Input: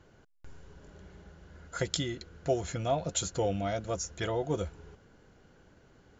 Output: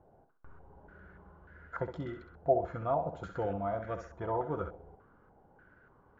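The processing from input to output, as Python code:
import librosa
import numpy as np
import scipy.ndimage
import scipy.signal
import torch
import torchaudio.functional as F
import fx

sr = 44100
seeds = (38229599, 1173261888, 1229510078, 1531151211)

y = fx.echo_thinned(x, sr, ms=65, feedback_pct=39, hz=170.0, wet_db=-8.0)
y = fx.filter_held_lowpass(y, sr, hz=3.4, low_hz=760.0, high_hz=1700.0)
y = y * 10.0 ** (-5.5 / 20.0)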